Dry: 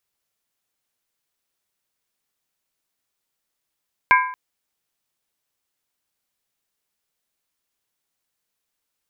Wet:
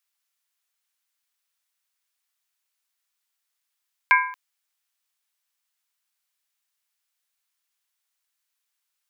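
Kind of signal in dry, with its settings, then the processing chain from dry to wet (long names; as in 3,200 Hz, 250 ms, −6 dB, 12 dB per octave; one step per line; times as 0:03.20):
struck skin length 0.23 s, lowest mode 1,010 Hz, modes 4, decay 0.60 s, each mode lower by 2.5 dB, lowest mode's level −10.5 dB
high-pass filter 1,100 Hz 12 dB per octave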